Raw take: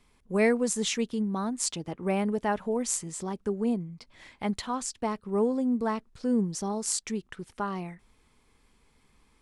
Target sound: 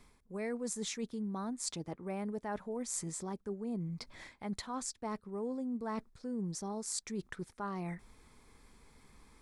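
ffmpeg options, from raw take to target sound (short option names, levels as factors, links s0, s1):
-af "equalizer=f=2900:w=4.4:g=-9,areverse,acompressor=threshold=0.00891:ratio=6,areverse,volume=1.58"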